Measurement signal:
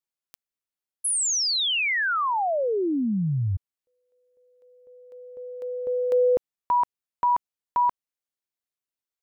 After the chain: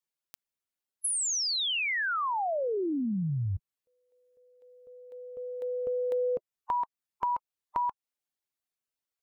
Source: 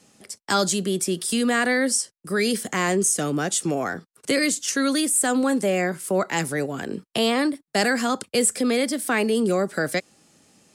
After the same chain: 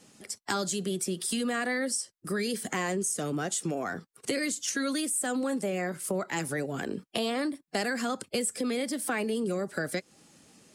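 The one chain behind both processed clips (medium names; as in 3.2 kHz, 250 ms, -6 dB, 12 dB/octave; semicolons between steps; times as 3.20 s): coarse spectral quantiser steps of 15 dB; compression 3:1, threshold -30 dBFS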